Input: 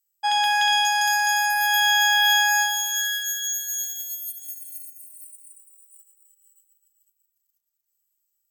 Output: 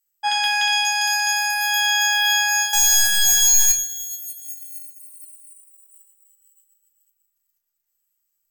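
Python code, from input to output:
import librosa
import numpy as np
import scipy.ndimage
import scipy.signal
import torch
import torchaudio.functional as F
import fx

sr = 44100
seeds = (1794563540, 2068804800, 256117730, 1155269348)

y = fx.peak_eq(x, sr, hz=1800.0, db=3.5, octaves=1.4)
y = fx.leveller(y, sr, passes=5, at=(2.73, 3.72))
y = fx.room_shoebox(y, sr, seeds[0], volume_m3=32.0, walls='mixed', distance_m=0.4)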